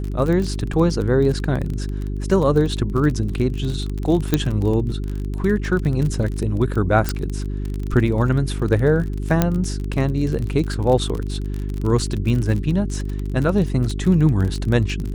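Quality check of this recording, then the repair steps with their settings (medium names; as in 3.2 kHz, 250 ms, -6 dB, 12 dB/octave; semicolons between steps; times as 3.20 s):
crackle 30 per s -24 dBFS
hum 50 Hz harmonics 8 -25 dBFS
4.34 s: pop -3 dBFS
7.09 s: pop -6 dBFS
9.42 s: pop -3 dBFS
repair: de-click; de-hum 50 Hz, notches 8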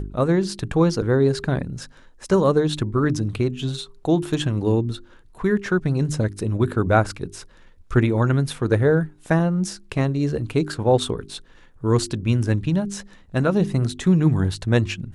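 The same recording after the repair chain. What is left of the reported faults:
4.34 s: pop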